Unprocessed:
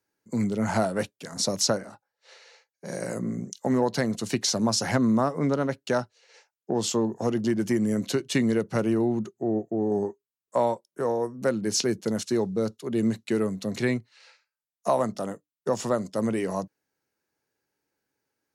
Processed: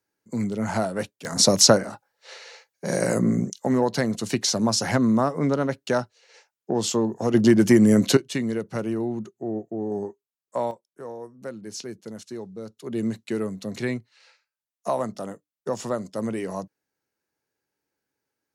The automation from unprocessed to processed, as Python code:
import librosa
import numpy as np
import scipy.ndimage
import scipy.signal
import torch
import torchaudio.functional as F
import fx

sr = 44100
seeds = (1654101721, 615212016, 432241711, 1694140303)

y = fx.gain(x, sr, db=fx.steps((0.0, -0.5), (1.25, 9.0), (3.5, 2.0), (7.34, 9.0), (8.17, -3.0), (10.71, -10.5), (12.77, -2.0)))